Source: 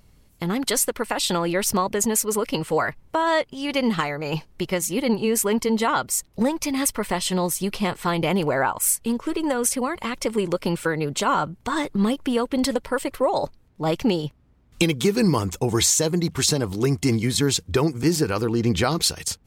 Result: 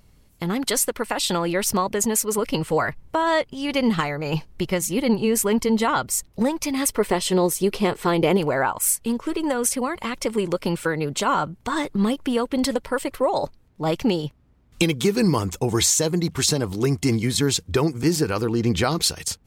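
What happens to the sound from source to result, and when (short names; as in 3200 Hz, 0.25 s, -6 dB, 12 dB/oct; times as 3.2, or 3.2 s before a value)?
2.38–6.32 low shelf 150 Hz +6.5 dB
6.87–8.37 bell 410 Hz +9 dB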